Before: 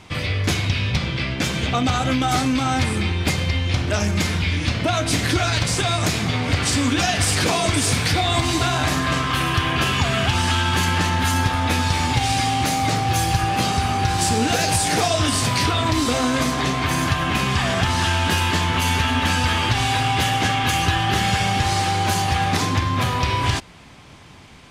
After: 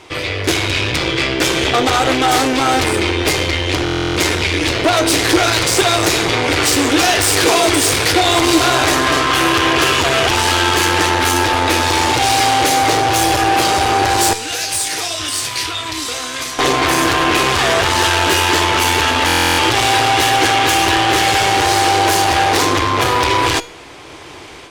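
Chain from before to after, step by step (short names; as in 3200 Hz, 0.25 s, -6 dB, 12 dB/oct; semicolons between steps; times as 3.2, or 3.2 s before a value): AGC gain up to 7 dB; 14.33–16.59 passive tone stack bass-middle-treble 5-5-5; added harmonics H 5 -7 dB, 8 -13 dB, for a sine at -2 dBFS; resonant low shelf 270 Hz -7.5 dB, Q 3; resonator 480 Hz, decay 0.43 s, mix 60%; stuck buffer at 3.84/19.26, samples 1024, times 13; gain +2 dB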